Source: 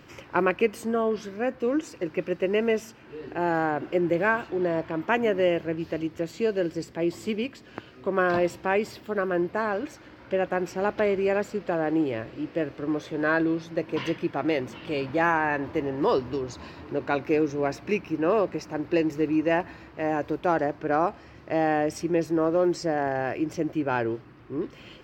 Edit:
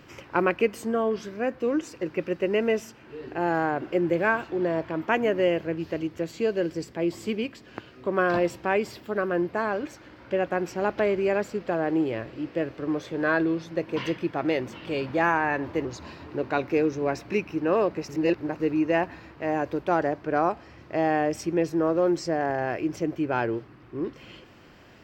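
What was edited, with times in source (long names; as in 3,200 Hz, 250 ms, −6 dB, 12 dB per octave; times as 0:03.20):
0:15.85–0:16.42: remove
0:18.66–0:19.17: reverse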